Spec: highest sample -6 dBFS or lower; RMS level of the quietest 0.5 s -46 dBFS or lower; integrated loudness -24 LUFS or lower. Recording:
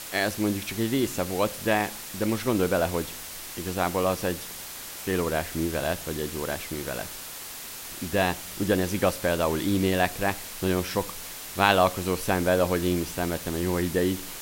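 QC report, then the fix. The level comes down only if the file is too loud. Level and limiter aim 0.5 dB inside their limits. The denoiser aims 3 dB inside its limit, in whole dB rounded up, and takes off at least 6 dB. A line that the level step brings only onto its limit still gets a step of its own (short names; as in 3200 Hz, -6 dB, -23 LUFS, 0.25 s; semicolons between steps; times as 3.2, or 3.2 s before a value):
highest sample -4.0 dBFS: fail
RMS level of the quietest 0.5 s -39 dBFS: fail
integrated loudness -27.0 LUFS: OK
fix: denoiser 10 dB, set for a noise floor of -39 dBFS; limiter -6.5 dBFS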